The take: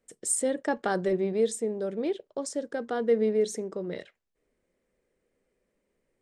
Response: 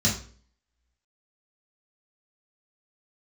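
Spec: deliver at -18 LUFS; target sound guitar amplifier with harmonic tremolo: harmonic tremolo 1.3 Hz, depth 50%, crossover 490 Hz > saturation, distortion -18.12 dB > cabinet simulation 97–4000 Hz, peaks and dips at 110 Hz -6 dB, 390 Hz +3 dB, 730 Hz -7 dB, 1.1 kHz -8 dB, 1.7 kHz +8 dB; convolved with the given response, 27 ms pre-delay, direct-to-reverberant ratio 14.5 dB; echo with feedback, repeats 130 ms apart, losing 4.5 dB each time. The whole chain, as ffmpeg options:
-filter_complex "[0:a]aecho=1:1:130|260|390|520|650|780|910|1040|1170:0.596|0.357|0.214|0.129|0.0772|0.0463|0.0278|0.0167|0.01,asplit=2[s0][s1];[1:a]atrim=start_sample=2205,adelay=27[s2];[s1][s2]afir=irnorm=-1:irlink=0,volume=0.0501[s3];[s0][s3]amix=inputs=2:normalize=0,acrossover=split=490[s4][s5];[s4]aeval=exprs='val(0)*(1-0.5/2+0.5/2*cos(2*PI*1.3*n/s))':c=same[s6];[s5]aeval=exprs='val(0)*(1-0.5/2-0.5/2*cos(2*PI*1.3*n/s))':c=same[s7];[s6][s7]amix=inputs=2:normalize=0,asoftclip=threshold=0.112,highpass=97,equalizer=f=110:t=q:w=4:g=-6,equalizer=f=390:t=q:w=4:g=3,equalizer=f=730:t=q:w=4:g=-7,equalizer=f=1100:t=q:w=4:g=-8,equalizer=f=1700:t=q:w=4:g=8,lowpass=f=4000:w=0.5412,lowpass=f=4000:w=1.3066,volume=4.22"

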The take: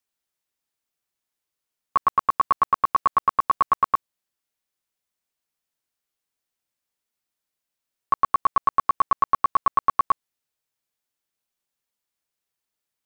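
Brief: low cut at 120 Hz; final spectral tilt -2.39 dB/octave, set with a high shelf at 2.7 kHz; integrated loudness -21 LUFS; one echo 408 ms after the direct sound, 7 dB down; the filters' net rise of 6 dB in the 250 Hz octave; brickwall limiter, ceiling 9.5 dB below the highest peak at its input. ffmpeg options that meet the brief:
-af "highpass=120,equalizer=f=250:t=o:g=8,highshelf=f=2700:g=6,alimiter=limit=0.119:level=0:latency=1,aecho=1:1:408:0.447,volume=2.99"

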